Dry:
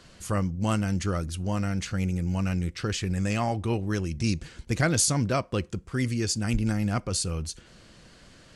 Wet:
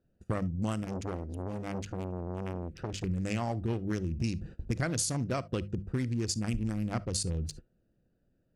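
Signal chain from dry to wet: Wiener smoothing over 41 samples; notches 50/100/150/200 Hz; gate -45 dBFS, range -22 dB; compressor 6:1, threshold -33 dBFS, peak gain reduction 13 dB; reverb, pre-delay 15 ms, DRR 20 dB; 0.83–3.04 core saturation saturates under 690 Hz; gain +4.5 dB

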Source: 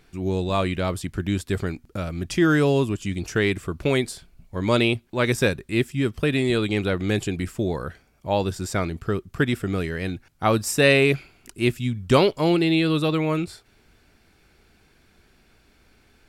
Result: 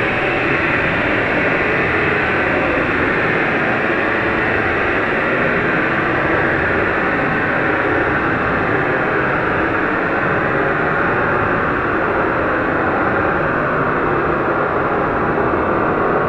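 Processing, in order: per-bin compression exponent 0.2; LFO low-pass sine 0.31 Hz 790–2400 Hz; Paulstretch 28×, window 0.05 s, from 14.05

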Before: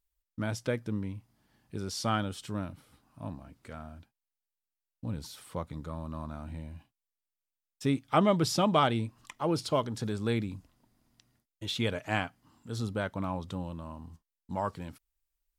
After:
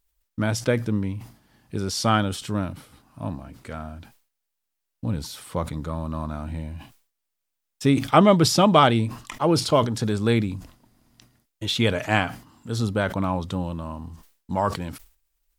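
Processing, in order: sustainer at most 130 dB/s; gain +9 dB

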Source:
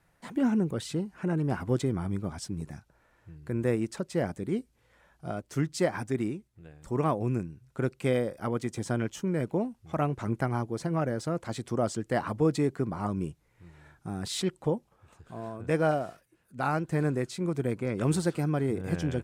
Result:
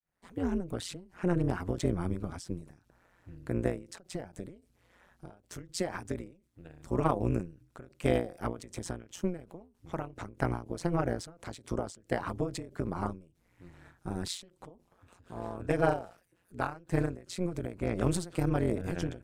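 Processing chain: opening faded in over 0.86 s; AM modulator 180 Hz, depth 85%; ending taper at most 140 dB/s; gain +3.5 dB

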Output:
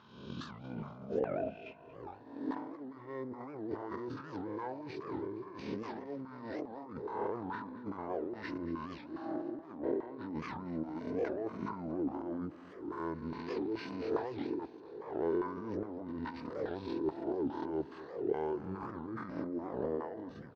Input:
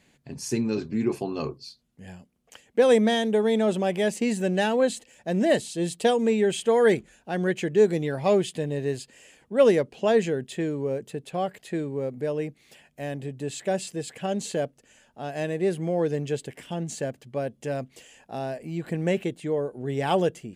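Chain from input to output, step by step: spectral swells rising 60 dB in 0.97 s; dynamic EQ 390 Hz, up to -7 dB, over -40 dBFS, Q 7.2; negative-ratio compressor -30 dBFS, ratio -1; LFO band-pass saw down 2.4 Hz 700–1600 Hz; pitch shift -9.5 st; feedback echo 0.232 s, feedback 50%, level -16.5 dB; record warp 78 rpm, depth 250 cents; gain +1.5 dB

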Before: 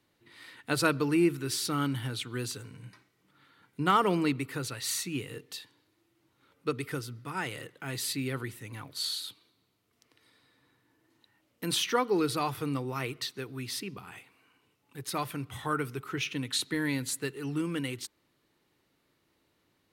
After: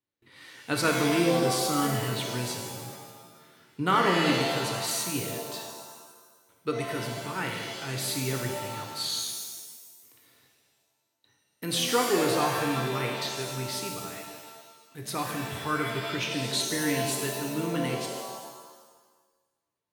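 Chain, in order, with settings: gate with hold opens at -55 dBFS; shimmer reverb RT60 1.3 s, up +7 st, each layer -2 dB, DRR 2 dB

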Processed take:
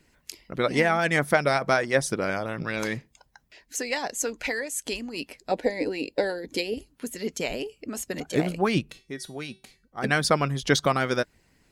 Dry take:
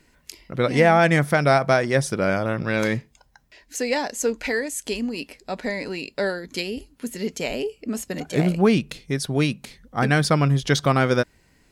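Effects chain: 5.51–6.74 thirty-one-band EQ 315 Hz +12 dB, 500 Hz +11 dB, 800 Hz +7 dB, 1250 Hz -12 dB, 6300 Hz -4 dB; harmonic-percussive split harmonic -10 dB; 8.91–10.04 resonator 380 Hz, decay 0.33 s, harmonics all, mix 70%

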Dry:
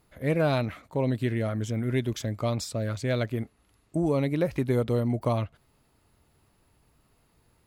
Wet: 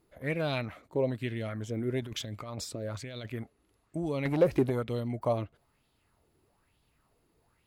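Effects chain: 2.02–3.32 negative-ratio compressor -32 dBFS, ratio -1; 4.25–4.7 sample leveller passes 2; LFO bell 1.1 Hz 330–3600 Hz +11 dB; gain -7.5 dB

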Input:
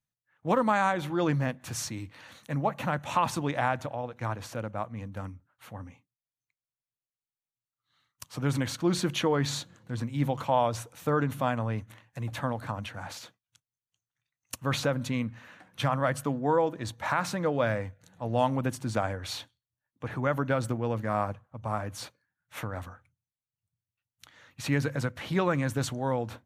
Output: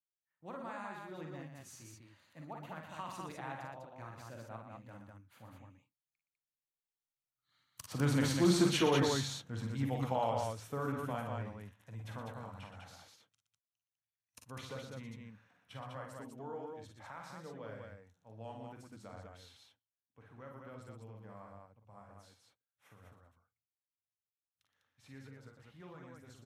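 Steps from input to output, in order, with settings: Doppler pass-by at 8.29, 19 m/s, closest 19 m; tapped delay 44/55/119/200 ms -6.5/-7.5/-8/-3 dB; gain -4 dB

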